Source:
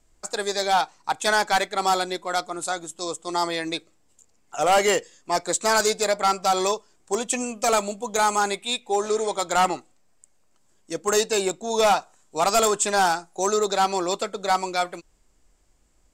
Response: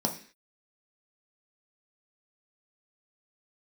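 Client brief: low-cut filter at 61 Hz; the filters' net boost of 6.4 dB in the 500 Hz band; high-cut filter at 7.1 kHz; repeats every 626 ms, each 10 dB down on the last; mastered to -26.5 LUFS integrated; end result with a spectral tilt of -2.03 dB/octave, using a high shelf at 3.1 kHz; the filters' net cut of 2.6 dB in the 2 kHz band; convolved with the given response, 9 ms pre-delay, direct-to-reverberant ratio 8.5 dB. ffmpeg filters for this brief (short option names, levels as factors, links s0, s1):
-filter_complex "[0:a]highpass=61,lowpass=7100,equalizer=f=500:t=o:g=8.5,equalizer=f=2000:t=o:g=-7.5,highshelf=f=3100:g=8.5,aecho=1:1:626|1252|1878|2504:0.316|0.101|0.0324|0.0104,asplit=2[s0][s1];[1:a]atrim=start_sample=2205,adelay=9[s2];[s1][s2]afir=irnorm=-1:irlink=0,volume=0.168[s3];[s0][s3]amix=inputs=2:normalize=0,volume=0.376"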